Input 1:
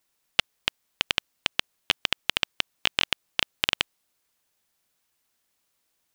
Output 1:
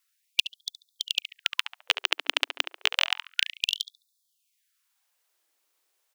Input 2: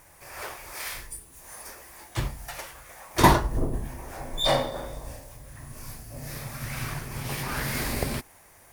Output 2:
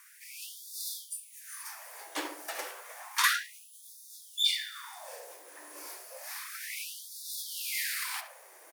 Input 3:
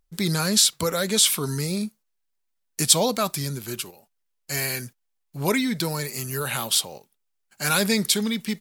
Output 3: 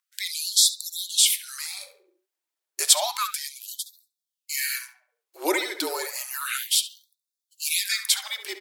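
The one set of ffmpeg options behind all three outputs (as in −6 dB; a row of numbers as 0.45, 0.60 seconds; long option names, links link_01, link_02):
-filter_complex "[0:a]asplit=2[link_01][link_02];[link_02]adelay=70,lowpass=frequency=2100:poles=1,volume=-7dB,asplit=2[link_03][link_04];[link_04]adelay=70,lowpass=frequency=2100:poles=1,volume=0.47,asplit=2[link_05][link_06];[link_06]adelay=70,lowpass=frequency=2100:poles=1,volume=0.47,asplit=2[link_07][link_08];[link_08]adelay=70,lowpass=frequency=2100:poles=1,volume=0.47,asplit=2[link_09][link_10];[link_10]adelay=70,lowpass=frequency=2100:poles=1,volume=0.47,asplit=2[link_11][link_12];[link_12]adelay=70,lowpass=frequency=2100:poles=1,volume=0.47[link_13];[link_01][link_03][link_05][link_07][link_09][link_11][link_13]amix=inputs=7:normalize=0,afreqshift=-42,afftfilt=real='re*gte(b*sr/1024,260*pow(3500/260,0.5+0.5*sin(2*PI*0.31*pts/sr)))':imag='im*gte(b*sr/1024,260*pow(3500/260,0.5+0.5*sin(2*PI*0.31*pts/sr)))':win_size=1024:overlap=0.75"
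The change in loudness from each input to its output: −0.5, −5.5, −1.0 LU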